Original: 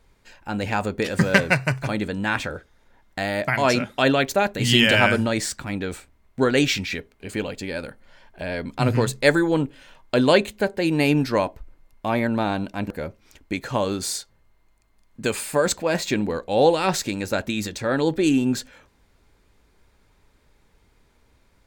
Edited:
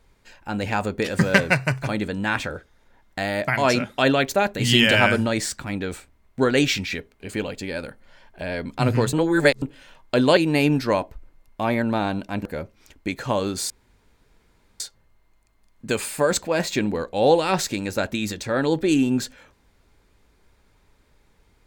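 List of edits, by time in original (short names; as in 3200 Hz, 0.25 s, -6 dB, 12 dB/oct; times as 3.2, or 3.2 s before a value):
9.13–9.62 reverse
10.37–10.82 cut
14.15 insert room tone 1.10 s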